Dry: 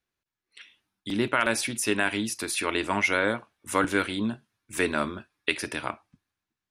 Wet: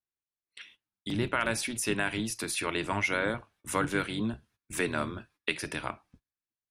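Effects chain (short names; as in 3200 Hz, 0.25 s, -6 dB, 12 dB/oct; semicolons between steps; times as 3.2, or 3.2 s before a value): octaver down 1 oct, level -4 dB; gate -57 dBFS, range -17 dB; in parallel at +2.5 dB: compressor, threshold -37 dBFS, peak gain reduction 18 dB; on the sum: gain -6.5 dB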